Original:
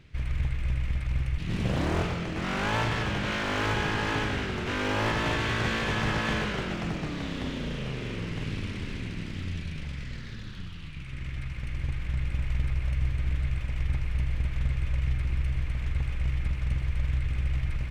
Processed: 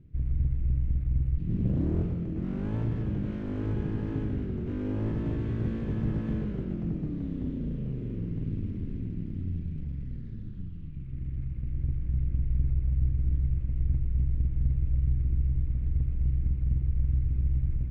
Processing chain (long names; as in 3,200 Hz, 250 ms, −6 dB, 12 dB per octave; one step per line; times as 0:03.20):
drawn EQ curve 300 Hz 0 dB, 820 Hz −20 dB, 5,000 Hz −30 dB
level +1.5 dB